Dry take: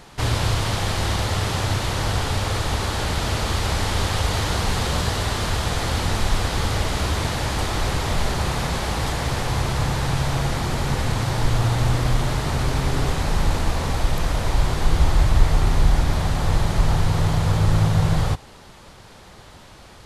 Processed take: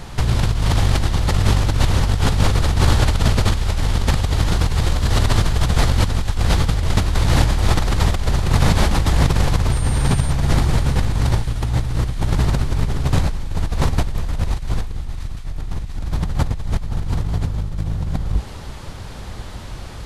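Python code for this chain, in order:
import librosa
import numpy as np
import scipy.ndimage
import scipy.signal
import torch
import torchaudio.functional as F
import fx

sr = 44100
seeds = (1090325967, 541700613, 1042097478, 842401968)

y = fx.octave_divider(x, sr, octaves=1, level_db=0.0)
y = fx.low_shelf(y, sr, hz=140.0, db=9.5)
y = fx.over_compress(y, sr, threshold_db=-18.0, ratio=-1.0)
y = fx.dmg_tone(y, sr, hz=9000.0, level_db=-34.0, at=(9.71, 10.3), fade=0.02)
y = fx.echo_wet_highpass(y, sr, ms=693, feedback_pct=72, hz=1600.0, wet_db=-14)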